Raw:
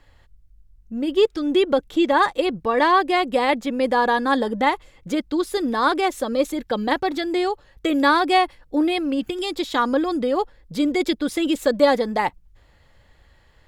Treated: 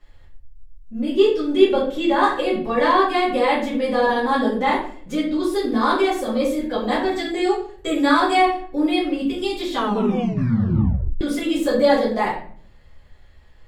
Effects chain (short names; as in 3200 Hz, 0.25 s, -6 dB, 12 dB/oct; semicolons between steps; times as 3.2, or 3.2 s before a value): 6.88–8.34 bell 7700 Hz +9.5 dB 0.28 oct; reverb RT60 0.50 s, pre-delay 4 ms, DRR -9.5 dB; 9.71 tape stop 1.50 s; gain -9.5 dB